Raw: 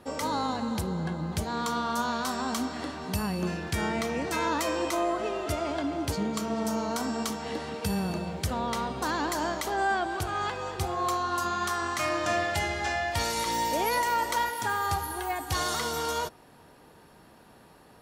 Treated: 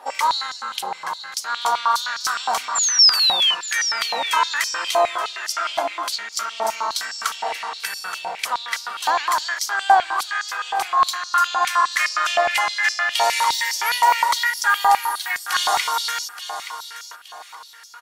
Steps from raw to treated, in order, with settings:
echo ahead of the sound 45 ms −22 dB
sound drawn into the spectrogram fall, 0:02.75–0:03.55, 2,900–7,400 Hz −28 dBFS
on a send: repeating echo 874 ms, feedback 33%, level −11 dB
on the sum: high-pass on a step sequencer 9.7 Hz 800–5,200 Hz
level +6 dB

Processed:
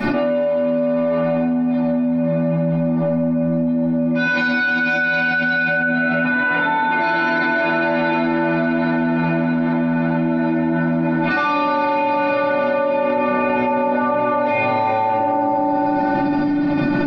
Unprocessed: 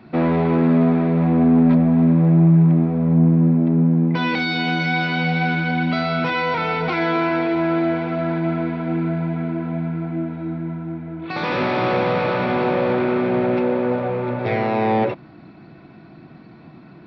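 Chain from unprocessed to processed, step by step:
0:05.68–0:07.00: high-frequency loss of the air 390 metres
stiff-string resonator 290 Hz, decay 0.23 s, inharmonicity 0.002
feedback echo with a band-pass in the loop 148 ms, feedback 66%, band-pass 740 Hz, level −4.5 dB
convolution reverb RT60 0.95 s, pre-delay 5 ms, DRR −12 dB
envelope flattener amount 100%
level −3 dB

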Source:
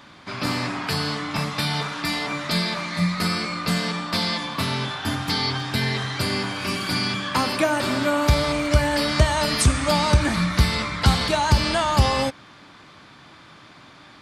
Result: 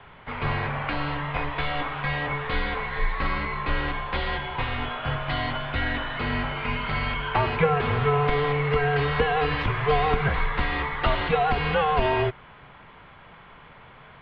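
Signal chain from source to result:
0:03.93–0:04.78: hum removal 49.06 Hz, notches 34
single-sideband voice off tune −150 Hz 150–3,100 Hz

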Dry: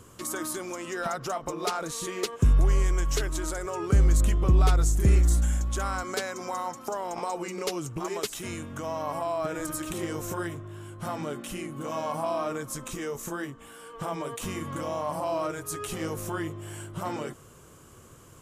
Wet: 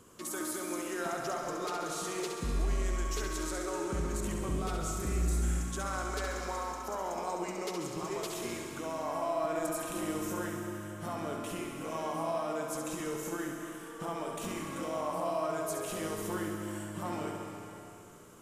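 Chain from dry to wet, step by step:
low shelf with overshoot 150 Hz −6 dB, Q 1.5
brickwall limiter −21 dBFS, peak gain reduction 7.5 dB
on a send: flutter between parallel walls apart 11.6 metres, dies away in 0.72 s
on the sum: comb and all-pass reverb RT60 2.6 s, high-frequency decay 1×, pre-delay 105 ms, DRR 4.5 dB
level −6 dB

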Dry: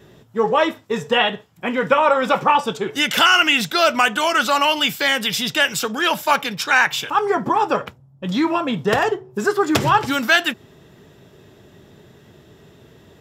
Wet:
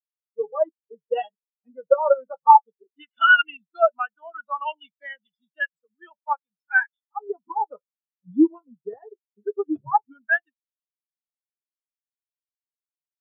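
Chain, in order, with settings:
power curve on the samples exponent 1.4
automatic gain control gain up to 6 dB
every bin expanded away from the loudest bin 4 to 1

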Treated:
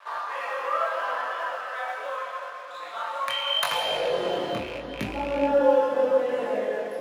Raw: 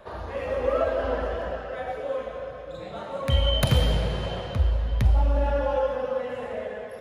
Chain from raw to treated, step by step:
loose part that buzzes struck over −21 dBFS, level −24 dBFS
in parallel at +1 dB: downward compressor, threshold −28 dBFS, peak gain reduction 12.5 dB
on the sum: chorus effect 0.77 Hz, delay 19 ms, depth 6.5 ms
dead-zone distortion −49 dBFS
high-pass filter sweep 1,100 Hz → 290 Hz, 0:03.61–0:04.45
on a send at −6.5 dB: convolution reverb, pre-delay 6 ms

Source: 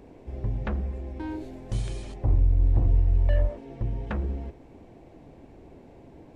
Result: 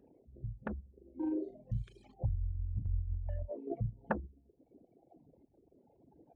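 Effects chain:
spectral envelope exaggerated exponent 2
reverb reduction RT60 1.7 s
high-pass filter 220 Hz 6 dB per octave
noise reduction from a noise print of the clip's start 12 dB
0:03.67–0:04.20: parametric band 650 Hz +13 dB 2.5 octaves
downward compressor 2 to 1, threshold −40 dBFS, peak gain reduction 9 dB
sample-and-hold tremolo
0:00.92–0:01.64: double-tracking delay 41 ms −3 dB
level +7.5 dB

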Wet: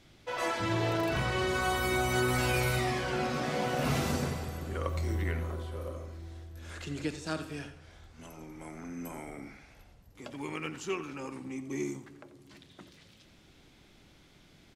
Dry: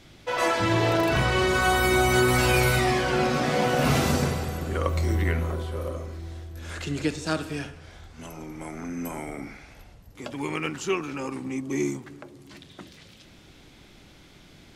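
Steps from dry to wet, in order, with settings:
single-tap delay 88 ms −14 dB
level −8 dB

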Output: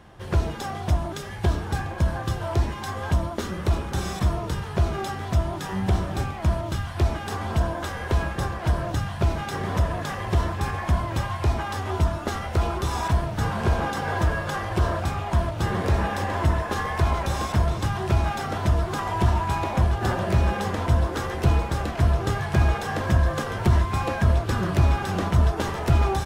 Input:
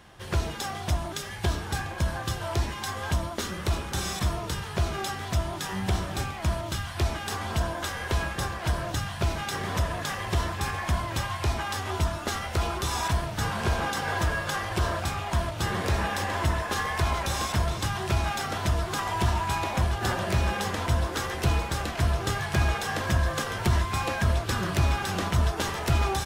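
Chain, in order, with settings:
tilt shelving filter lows +5 dB, about 1,500 Hz

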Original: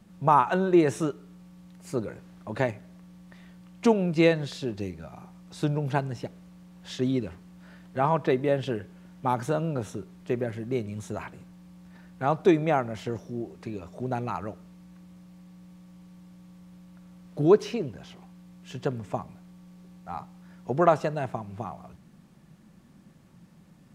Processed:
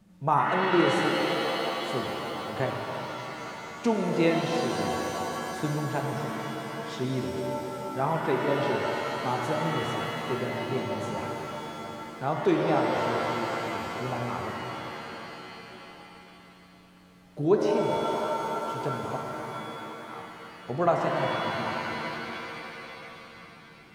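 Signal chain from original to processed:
0:19.16–0:20.19: inverse Chebyshev high-pass filter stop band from 500 Hz
reverb with rising layers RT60 3.7 s, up +7 semitones, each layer −2 dB, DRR 1 dB
level −4.5 dB

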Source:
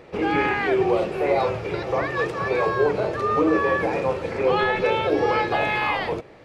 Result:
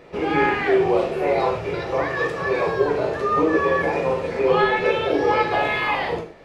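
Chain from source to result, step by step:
reverb whose tail is shaped and stops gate 160 ms falling, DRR 0.5 dB
level −1.5 dB

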